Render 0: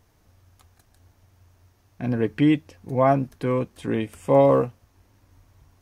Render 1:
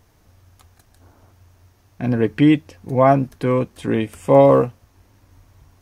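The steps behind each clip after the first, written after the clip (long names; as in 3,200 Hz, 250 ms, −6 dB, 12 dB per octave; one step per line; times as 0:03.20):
gain on a spectral selection 0:01.02–0:01.32, 210–1,600 Hz +7 dB
level +5 dB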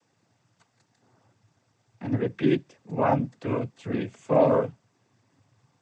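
cochlear-implant simulation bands 16
level −8.5 dB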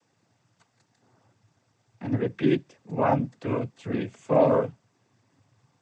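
no processing that can be heard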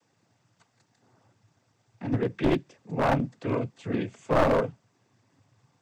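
wavefolder on the positive side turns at −19.5 dBFS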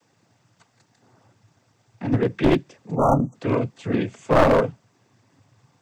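time-frequency box erased 0:02.96–0:03.35, 1,400–5,700 Hz
level +6 dB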